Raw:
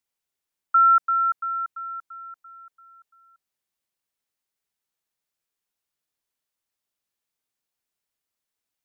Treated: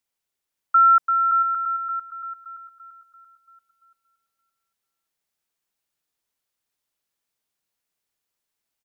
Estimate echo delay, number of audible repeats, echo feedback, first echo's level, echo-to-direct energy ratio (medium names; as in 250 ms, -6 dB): 570 ms, 3, 18%, -4.5 dB, -4.5 dB